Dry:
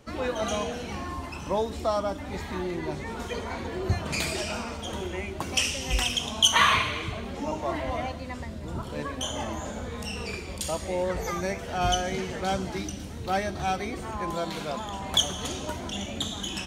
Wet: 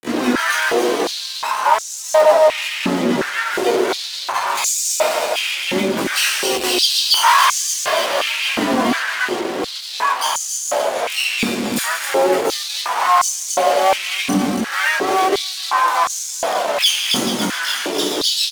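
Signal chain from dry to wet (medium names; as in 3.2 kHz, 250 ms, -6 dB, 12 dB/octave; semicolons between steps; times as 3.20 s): doubling 21 ms -4.5 dB; feedback delay 246 ms, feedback 46%, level -8 dB; tempo 0.9×; on a send: feedback echo behind a low-pass 434 ms, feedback 65%, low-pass 4 kHz, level -14 dB; on the sum: companded quantiser 8-bit; fuzz box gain 32 dB, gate -37 dBFS; upward compressor, threshold -24 dBFS; flange 0.13 Hz, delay 2.5 ms, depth 5.9 ms, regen -36%; harmony voices +7 st -3 dB; step-sequenced high-pass 2.8 Hz 230–6600 Hz; trim -1 dB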